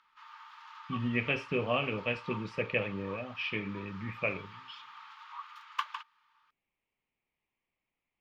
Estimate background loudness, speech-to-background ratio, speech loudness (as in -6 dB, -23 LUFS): -46.0 LUFS, 12.0 dB, -34.0 LUFS